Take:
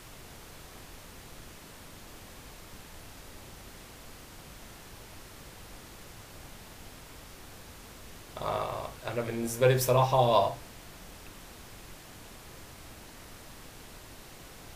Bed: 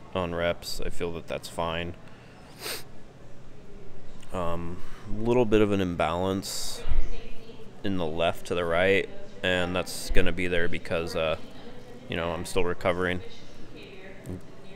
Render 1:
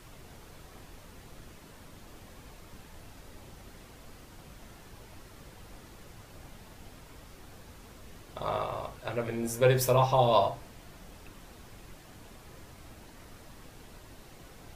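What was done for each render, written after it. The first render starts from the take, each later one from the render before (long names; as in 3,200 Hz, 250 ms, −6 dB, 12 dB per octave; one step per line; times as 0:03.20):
broadband denoise 6 dB, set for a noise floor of −50 dBFS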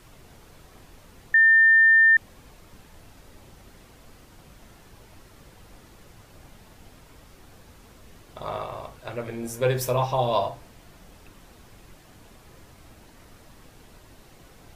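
0:01.34–0:02.17: beep over 1,800 Hz −12.5 dBFS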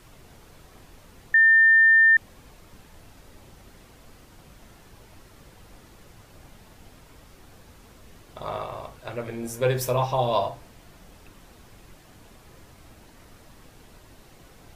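no processing that can be heard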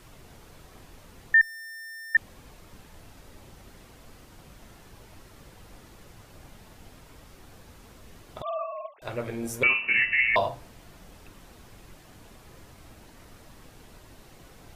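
0:01.41–0:02.15: tube saturation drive 41 dB, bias 0.8
0:08.42–0:09.02: three sine waves on the formant tracks
0:09.63–0:10.36: voice inversion scrambler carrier 2,800 Hz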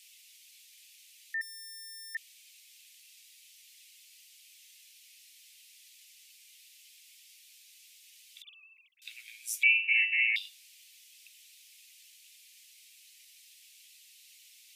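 Butterworth high-pass 2,300 Hz 48 dB per octave
parametric band 11,000 Hz +3 dB 2.3 octaves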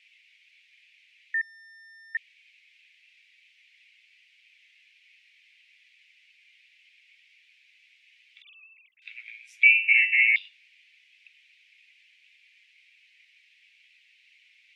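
low-pass with resonance 2,200 Hz, resonance Q 2.8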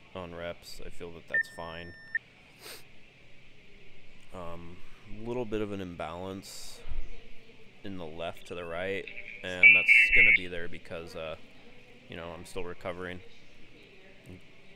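mix in bed −11.5 dB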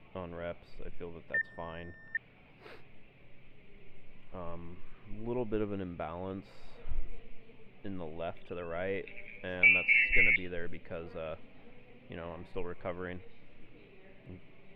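high-frequency loss of the air 470 metres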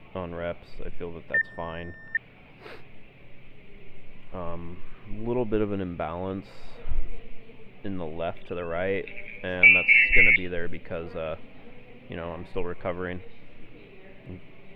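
level +8 dB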